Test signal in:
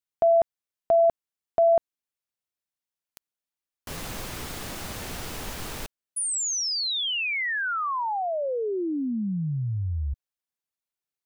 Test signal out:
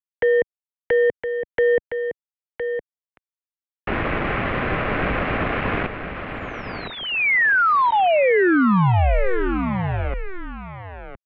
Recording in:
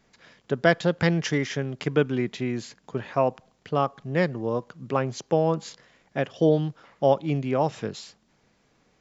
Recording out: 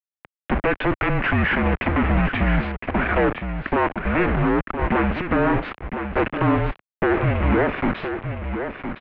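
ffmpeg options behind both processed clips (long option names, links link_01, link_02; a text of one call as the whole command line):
ffmpeg -i in.wav -filter_complex "[0:a]bandreject=frequency=1100:width=8.3,adynamicequalizer=threshold=0.00891:dfrequency=130:dqfactor=0.97:tfrequency=130:tqfactor=0.97:attack=5:release=100:ratio=0.375:range=3:mode=cutabove:tftype=bell,acompressor=threshold=-32dB:ratio=6:attack=12:release=45:knee=1:detection=peak,aeval=exprs='0.168*sin(PI/2*5.01*val(0)/0.168)':channel_layout=same,acrusher=bits=3:mix=0:aa=0.000001,asplit=2[link_01][link_02];[link_02]aecho=0:1:1013:0.398[link_03];[link_01][link_03]amix=inputs=2:normalize=0,highpass=frequency=190:width_type=q:width=0.5412,highpass=frequency=190:width_type=q:width=1.307,lowpass=frequency=2600:width_type=q:width=0.5176,lowpass=frequency=2600:width_type=q:width=0.7071,lowpass=frequency=2600:width_type=q:width=1.932,afreqshift=-190,volume=1.5dB" out.wav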